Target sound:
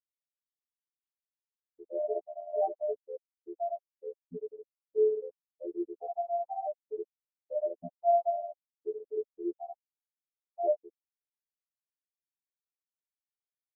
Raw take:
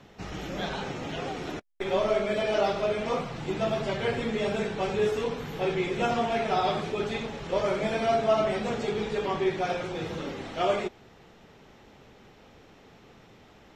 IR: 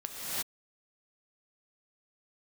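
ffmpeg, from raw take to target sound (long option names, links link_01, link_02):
-af "afftfilt=real='re*gte(hypot(re,im),0.447)':imag='im*gte(hypot(re,im),0.447)':win_size=1024:overlap=0.75,afftfilt=real='hypot(re,im)*cos(PI*b)':imag='0':win_size=2048:overlap=0.75,volume=3dB"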